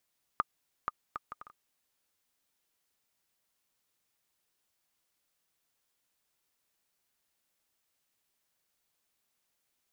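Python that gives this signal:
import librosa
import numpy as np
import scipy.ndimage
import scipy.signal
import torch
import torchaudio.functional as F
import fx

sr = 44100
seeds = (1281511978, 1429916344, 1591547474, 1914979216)

y = fx.bouncing_ball(sr, first_gap_s=0.48, ratio=0.58, hz=1220.0, decay_ms=29.0, level_db=-14.5)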